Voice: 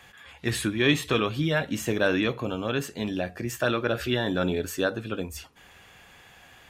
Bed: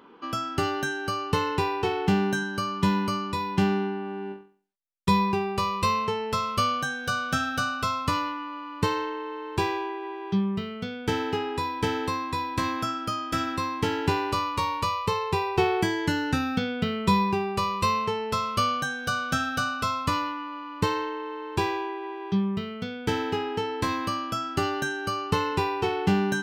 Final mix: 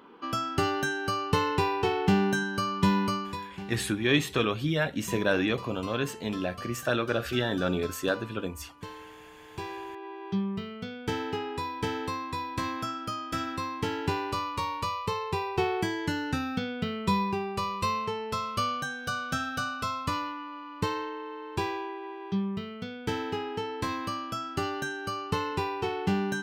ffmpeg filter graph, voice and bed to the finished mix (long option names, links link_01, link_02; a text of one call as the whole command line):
ffmpeg -i stem1.wav -i stem2.wav -filter_complex "[0:a]adelay=3250,volume=-2dB[link_01];[1:a]volume=12dB,afade=type=out:start_time=3.06:duration=0.48:silence=0.149624,afade=type=in:start_time=9.39:duration=0.87:silence=0.237137[link_02];[link_01][link_02]amix=inputs=2:normalize=0" out.wav